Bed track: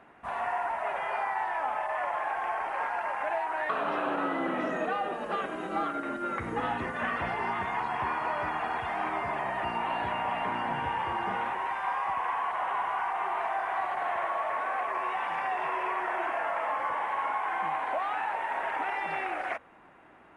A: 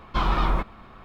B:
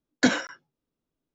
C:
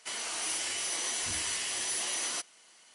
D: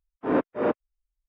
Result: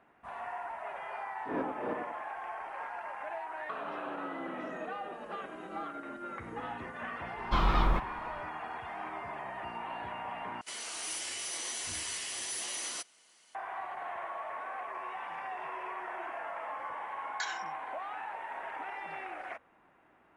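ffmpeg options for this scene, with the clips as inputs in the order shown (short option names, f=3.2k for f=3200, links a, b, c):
-filter_complex "[0:a]volume=-9dB[a];[4:a]asplit=2[b][c];[c]adelay=94,lowpass=f=2k:p=1,volume=-5.5dB,asplit=2[d][e];[e]adelay=94,lowpass=f=2k:p=1,volume=0.35,asplit=2[f][g];[g]adelay=94,lowpass=f=2k:p=1,volume=0.35,asplit=2[h][i];[i]adelay=94,lowpass=f=2k:p=1,volume=0.35[j];[b][d][f][h][j]amix=inputs=5:normalize=0[k];[2:a]highpass=f=1.2k:w=0.5412,highpass=f=1.2k:w=1.3066[l];[a]asplit=2[m][n];[m]atrim=end=10.614[o];[3:a]atrim=end=2.94,asetpts=PTS-STARTPTS,volume=-4.5dB[p];[n]atrim=start=13.546[q];[k]atrim=end=1.28,asetpts=PTS-STARTPTS,volume=-12.5dB,afade=t=in:d=0.004:c=hsin,afade=t=out:st=1.276:d=0.004:c=hsin,adelay=1220[r];[1:a]atrim=end=1.04,asetpts=PTS-STARTPTS,volume=-4dB,afade=t=in:d=0.004:c=hsin,afade=t=out:st=1.036:d=0.004:c=hsin,adelay=7370[s];[l]atrim=end=1.34,asetpts=PTS-STARTPTS,volume=-11dB,afade=t=in:d=0.004:c=hsin,afade=t=out:st=1.336:d=0.004:c=hsin,adelay=17170[t];[o][p]acrossfade=d=0.004:c1=hsin:c2=hsin[u];[u][q]acrossfade=d=0.004:c1=hsin:c2=hsin[v];[v][r][s][t]amix=inputs=4:normalize=0"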